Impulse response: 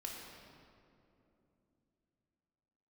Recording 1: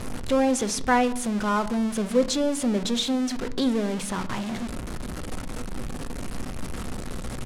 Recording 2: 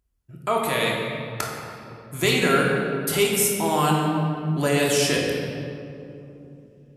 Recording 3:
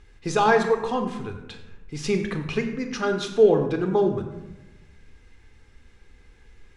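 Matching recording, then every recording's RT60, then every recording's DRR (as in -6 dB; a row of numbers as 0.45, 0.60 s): 2; not exponential, 2.9 s, 1.0 s; 10.5, -2.5, 5.5 dB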